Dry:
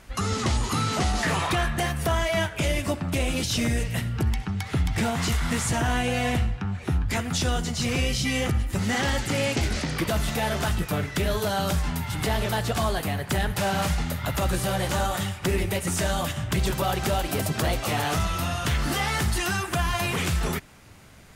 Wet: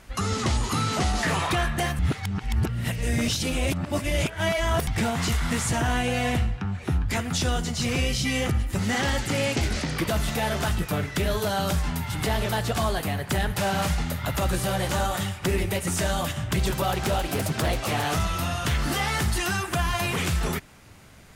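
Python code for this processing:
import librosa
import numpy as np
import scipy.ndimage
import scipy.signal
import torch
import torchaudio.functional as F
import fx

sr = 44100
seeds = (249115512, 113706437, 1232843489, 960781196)

y = fx.doppler_dist(x, sr, depth_ms=0.25, at=(16.92, 18.06))
y = fx.edit(y, sr, fx.reverse_span(start_s=1.99, length_s=2.88), tone=tone)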